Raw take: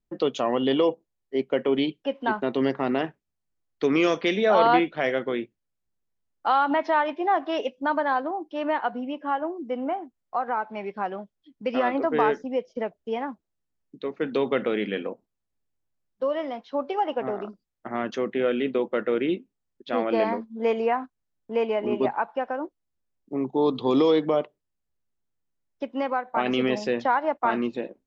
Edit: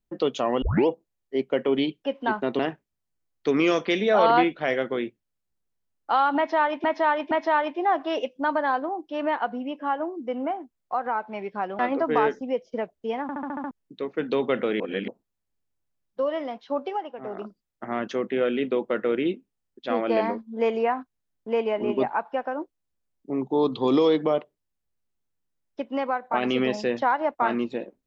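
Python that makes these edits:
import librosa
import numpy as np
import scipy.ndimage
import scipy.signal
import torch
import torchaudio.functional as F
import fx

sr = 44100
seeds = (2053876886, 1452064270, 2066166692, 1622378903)

y = fx.edit(x, sr, fx.tape_start(start_s=0.62, length_s=0.25),
    fx.cut(start_s=2.59, length_s=0.36),
    fx.repeat(start_s=6.73, length_s=0.47, count=3),
    fx.cut(start_s=11.21, length_s=0.61),
    fx.stutter_over(start_s=13.25, slice_s=0.07, count=7),
    fx.reverse_span(start_s=14.83, length_s=0.28),
    fx.fade_down_up(start_s=16.85, length_s=0.63, db=-11.0, fade_s=0.27), tone=tone)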